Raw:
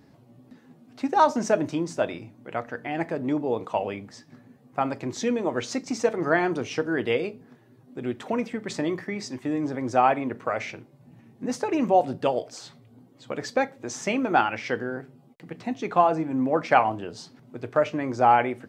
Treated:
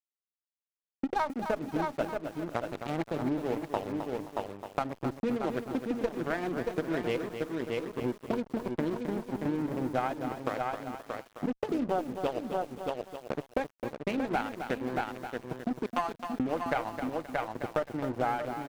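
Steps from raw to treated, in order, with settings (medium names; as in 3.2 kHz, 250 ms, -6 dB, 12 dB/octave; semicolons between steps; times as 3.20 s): local Wiener filter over 41 samples; 15.86–16.40 s: high-pass 1 kHz 12 dB/octave; crossover distortion -36 dBFS; valve stage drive 9 dB, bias 0.8; level rider gain up to 13 dB; delay 627 ms -10 dB; compression 6:1, threshold -28 dBFS, peak gain reduction 17.5 dB; bit-crushed delay 263 ms, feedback 35%, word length 8-bit, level -8 dB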